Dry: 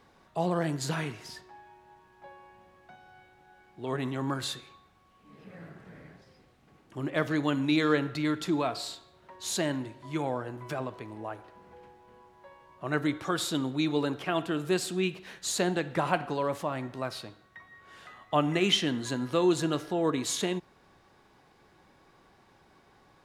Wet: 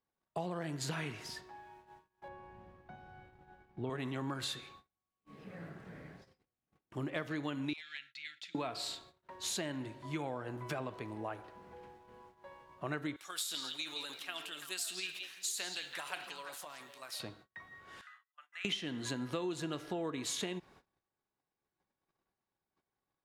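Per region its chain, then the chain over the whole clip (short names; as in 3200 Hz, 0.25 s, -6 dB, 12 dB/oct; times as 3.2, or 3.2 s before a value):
2.28–3.9 LPF 2200 Hz 6 dB/oct + low shelf 230 Hz +10 dB
7.73–8.55 inverse Chebyshev high-pass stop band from 1100 Hz + hard clip -29 dBFS + tape spacing loss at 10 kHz 20 dB
13.16–17.2 differentiator + transient shaper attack +4 dB, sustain +8 dB + delay with a stepping band-pass 0.168 s, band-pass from 3800 Hz, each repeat -1.4 oct, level -3 dB
18.01–18.65 auto swell 0.358 s + compressor 1.5:1, threshold -37 dBFS + ladder high-pass 1300 Hz, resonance 55%
whole clip: gate -56 dBFS, range -30 dB; dynamic EQ 2500 Hz, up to +4 dB, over -48 dBFS, Q 1.2; compressor 6:1, threshold -34 dBFS; gain -1 dB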